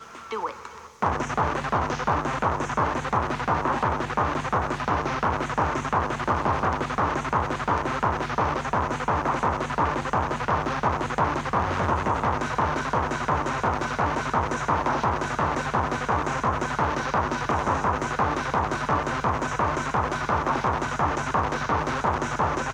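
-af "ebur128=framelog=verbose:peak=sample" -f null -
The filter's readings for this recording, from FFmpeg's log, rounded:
Integrated loudness:
  I:         -25.4 LUFS
  Threshold: -35.5 LUFS
Loudness range:
  LRA:         0.4 LU
  Threshold: -45.3 LUFS
  LRA low:   -25.5 LUFS
  LRA high:  -25.1 LUFS
Sample peak:
  Peak:       -9.3 dBFS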